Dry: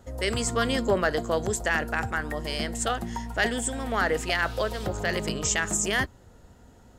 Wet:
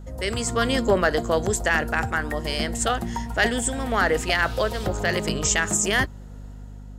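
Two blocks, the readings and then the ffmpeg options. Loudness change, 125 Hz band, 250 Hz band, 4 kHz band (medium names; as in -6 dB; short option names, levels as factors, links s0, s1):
+4.0 dB, +4.0 dB, +4.0 dB, +3.5 dB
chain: -af "dynaudnorm=f=120:g=9:m=1.58,aeval=exprs='val(0)+0.0126*(sin(2*PI*50*n/s)+sin(2*PI*2*50*n/s)/2+sin(2*PI*3*50*n/s)/3+sin(2*PI*4*50*n/s)/4+sin(2*PI*5*50*n/s)/5)':c=same"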